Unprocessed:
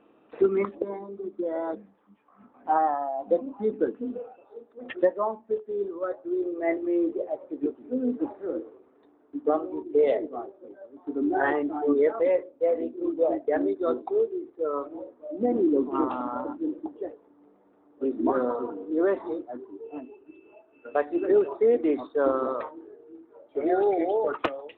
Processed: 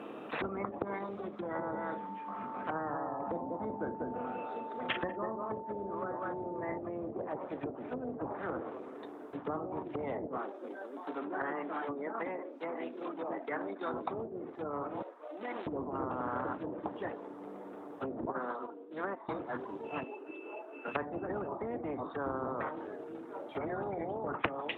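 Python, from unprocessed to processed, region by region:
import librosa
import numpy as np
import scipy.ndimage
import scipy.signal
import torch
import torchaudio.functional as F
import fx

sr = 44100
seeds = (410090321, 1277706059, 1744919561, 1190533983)

y = fx.doubler(x, sr, ms=41.0, db=-12.0, at=(1.54, 6.77), fade=0.02)
y = fx.dmg_tone(y, sr, hz=890.0, level_db=-33.0, at=(1.54, 6.77), fade=0.02)
y = fx.echo_single(y, sr, ms=193, db=-7.5, at=(1.54, 6.77), fade=0.02)
y = fx.chain(y, sr, fx.highpass(hz=260.0, slope=24),
    fx.peak_eq(hz=520.0, db=-6.0, octaves=1.6), at=(10.37, 13.94))
y = fx.chain(y, sr, fx.highpass(hz=1100.0, slope=12),
    fx.high_shelf(hz=2500.0, db=-8.0), at=(15.02, 15.67))
y = fx.chain(y, sr, fx.highpass(hz=560.0, slope=6),
    fx.air_absorb(metres=88.0),
    fx.upward_expand(threshold_db=-39.0, expansion=2.5), at=(18.25, 19.29))
y = fx.chain(y, sr, fx.highpass(hz=390.0, slope=12),
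    fx.high_shelf(hz=2500.0, db=-8.5), at=(20.03, 20.88))
y = fx.env_lowpass_down(y, sr, base_hz=520.0, full_db=-24.0)
y = scipy.signal.sosfilt(scipy.signal.butter(2, 120.0, 'highpass', fs=sr, output='sos'), y)
y = fx.spectral_comp(y, sr, ratio=4.0)
y = y * librosa.db_to_amplitude(1.0)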